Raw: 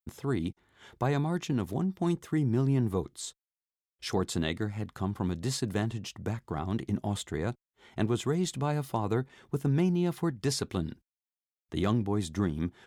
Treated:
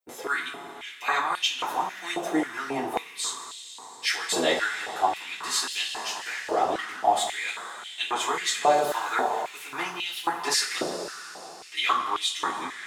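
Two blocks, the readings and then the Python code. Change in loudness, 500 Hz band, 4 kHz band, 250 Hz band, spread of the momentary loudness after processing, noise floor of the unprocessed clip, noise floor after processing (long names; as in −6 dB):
+4.0 dB, +3.5 dB, +13.0 dB, −6.5 dB, 11 LU, below −85 dBFS, −44 dBFS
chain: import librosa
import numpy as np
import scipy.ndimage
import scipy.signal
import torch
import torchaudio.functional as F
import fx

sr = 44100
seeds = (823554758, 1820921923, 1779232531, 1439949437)

y = fx.rev_double_slope(x, sr, seeds[0], early_s=0.28, late_s=4.3, knee_db=-18, drr_db=-9.0)
y = fx.filter_held_highpass(y, sr, hz=3.7, low_hz=580.0, high_hz=3000.0)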